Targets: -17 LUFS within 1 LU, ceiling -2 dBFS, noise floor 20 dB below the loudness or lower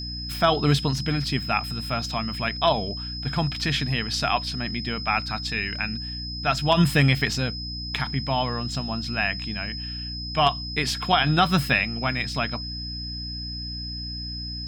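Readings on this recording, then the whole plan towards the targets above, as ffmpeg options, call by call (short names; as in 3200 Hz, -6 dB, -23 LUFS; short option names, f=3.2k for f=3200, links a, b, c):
hum 60 Hz; harmonics up to 300 Hz; hum level -33 dBFS; steady tone 5100 Hz; tone level -33 dBFS; loudness -25.0 LUFS; peak -8.5 dBFS; loudness target -17.0 LUFS
-> -af "bandreject=f=60:t=h:w=6,bandreject=f=120:t=h:w=6,bandreject=f=180:t=h:w=6,bandreject=f=240:t=h:w=6,bandreject=f=300:t=h:w=6"
-af "bandreject=f=5.1k:w=30"
-af "volume=8dB,alimiter=limit=-2dB:level=0:latency=1"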